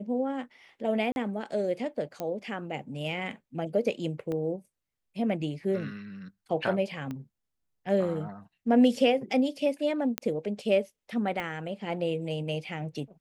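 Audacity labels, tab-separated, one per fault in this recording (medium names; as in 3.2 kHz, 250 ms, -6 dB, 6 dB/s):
1.120000	1.160000	dropout 41 ms
2.200000	2.200000	pop -19 dBFS
4.320000	4.320000	pop -23 dBFS
7.110000	7.110000	pop -24 dBFS
10.180000	10.180000	pop -11 dBFS
11.400000	11.400000	pop -21 dBFS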